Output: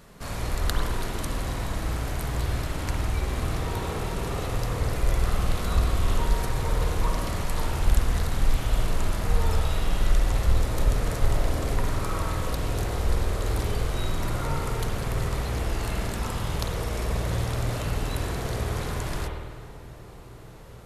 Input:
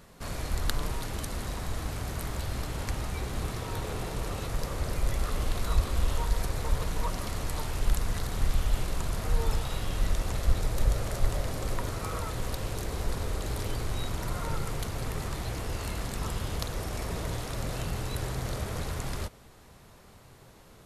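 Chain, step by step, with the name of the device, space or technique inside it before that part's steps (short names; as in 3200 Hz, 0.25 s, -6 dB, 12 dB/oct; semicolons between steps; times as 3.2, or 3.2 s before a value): dub delay into a spring reverb (darkening echo 0.431 s, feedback 82%, low-pass 1900 Hz, level -17.5 dB; spring tank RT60 1.3 s, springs 51 ms, chirp 75 ms, DRR 0.5 dB); gain +2 dB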